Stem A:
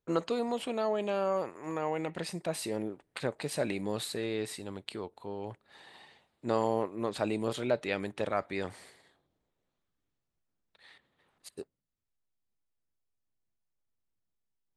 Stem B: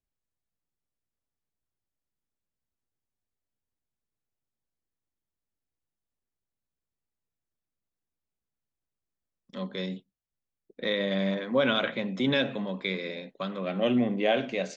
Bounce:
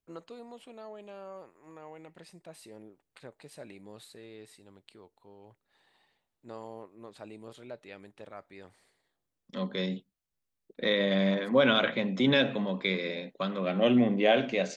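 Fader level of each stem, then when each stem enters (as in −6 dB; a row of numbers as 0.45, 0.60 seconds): −14.5, +1.5 decibels; 0.00, 0.00 seconds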